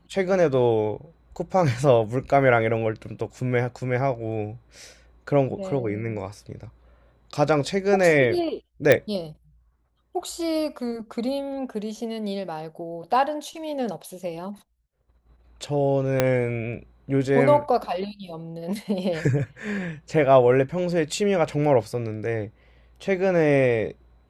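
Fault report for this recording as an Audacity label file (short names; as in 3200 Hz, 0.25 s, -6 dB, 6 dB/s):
8.920000	8.920000	pop -5 dBFS
16.200000	16.200000	pop -5 dBFS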